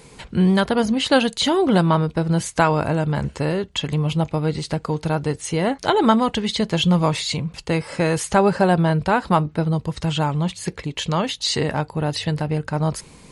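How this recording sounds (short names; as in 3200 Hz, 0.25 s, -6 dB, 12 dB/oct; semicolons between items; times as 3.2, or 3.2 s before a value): noise floor -47 dBFS; spectral tilt -5.0 dB/oct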